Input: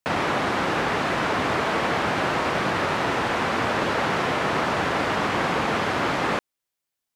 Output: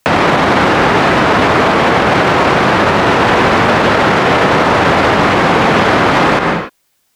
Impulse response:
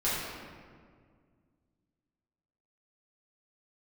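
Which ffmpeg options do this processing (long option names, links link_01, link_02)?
-filter_complex "[0:a]acrossover=split=850|5700[link_01][link_02][link_03];[link_01]acompressor=threshold=-27dB:ratio=4[link_04];[link_02]acompressor=threshold=-30dB:ratio=4[link_05];[link_03]acompressor=threshold=-57dB:ratio=4[link_06];[link_04][link_05][link_06]amix=inputs=3:normalize=0,asplit=2[link_07][link_08];[1:a]atrim=start_sample=2205,afade=type=out:start_time=0.23:duration=0.01,atrim=end_sample=10584,adelay=119[link_09];[link_08][link_09]afir=irnorm=-1:irlink=0,volume=-17dB[link_10];[link_07][link_10]amix=inputs=2:normalize=0,alimiter=level_in=24dB:limit=-1dB:release=50:level=0:latency=1,volume=-1dB"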